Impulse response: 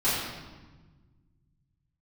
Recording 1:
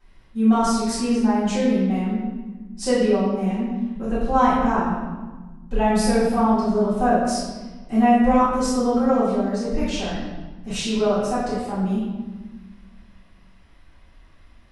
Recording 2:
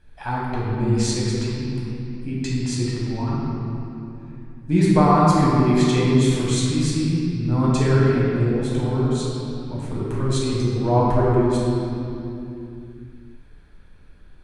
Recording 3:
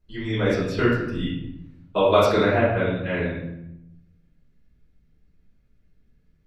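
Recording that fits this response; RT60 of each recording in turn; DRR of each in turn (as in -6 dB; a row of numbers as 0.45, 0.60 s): 1; 1.3, 2.8, 0.80 s; -13.5, -6.5, -11.0 dB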